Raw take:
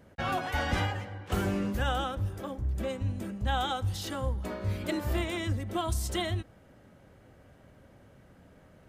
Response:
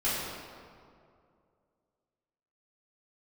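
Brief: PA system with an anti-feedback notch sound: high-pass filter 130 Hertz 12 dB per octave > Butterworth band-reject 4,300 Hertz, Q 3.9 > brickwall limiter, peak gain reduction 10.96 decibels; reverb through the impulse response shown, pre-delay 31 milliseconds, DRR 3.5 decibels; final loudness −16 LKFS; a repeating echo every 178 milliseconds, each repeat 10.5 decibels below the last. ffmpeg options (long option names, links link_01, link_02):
-filter_complex "[0:a]aecho=1:1:178|356|534:0.299|0.0896|0.0269,asplit=2[link_01][link_02];[1:a]atrim=start_sample=2205,adelay=31[link_03];[link_02][link_03]afir=irnorm=-1:irlink=0,volume=-14dB[link_04];[link_01][link_04]amix=inputs=2:normalize=0,highpass=130,asuperstop=centerf=4300:order=8:qfactor=3.9,volume=21.5dB,alimiter=limit=-7.5dB:level=0:latency=1"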